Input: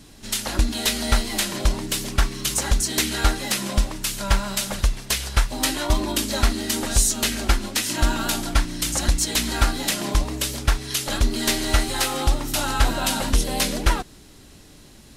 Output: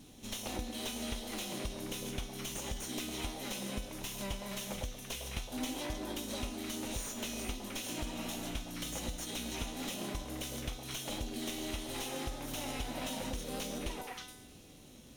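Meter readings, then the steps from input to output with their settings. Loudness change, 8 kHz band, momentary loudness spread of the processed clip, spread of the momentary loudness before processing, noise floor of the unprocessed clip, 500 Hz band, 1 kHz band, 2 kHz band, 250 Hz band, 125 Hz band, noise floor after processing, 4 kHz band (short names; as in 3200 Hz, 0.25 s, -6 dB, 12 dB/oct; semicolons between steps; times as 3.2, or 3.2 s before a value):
-16.5 dB, -17.5 dB, 3 LU, 4 LU, -47 dBFS, -12.5 dB, -17.0 dB, -17.5 dB, -12.5 dB, -18.5 dB, -55 dBFS, -16.0 dB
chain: minimum comb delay 0.32 ms; low shelf 94 Hz -9.5 dB; on a send: delay with a stepping band-pass 0.104 s, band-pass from 630 Hz, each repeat 1.4 oct, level -2 dB; on the sum: vibrato 0.91 Hz 5.5 cents; low shelf 400 Hz +4.5 dB; compressor, threshold -28 dBFS, peak gain reduction 13 dB; resonator 250 Hz, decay 0.99 s, mix 80%; slew limiter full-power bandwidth 44 Hz; gain +5 dB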